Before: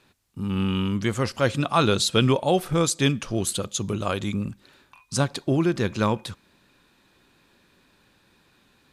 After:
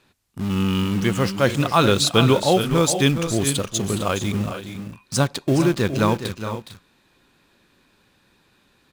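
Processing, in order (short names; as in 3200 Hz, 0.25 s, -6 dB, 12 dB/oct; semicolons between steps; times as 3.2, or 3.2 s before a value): in parallel at -6.5 dB: bit-crush 5-bit; on the sum: tapped delay 0.415/0.451 s -10.5/-12.5 dB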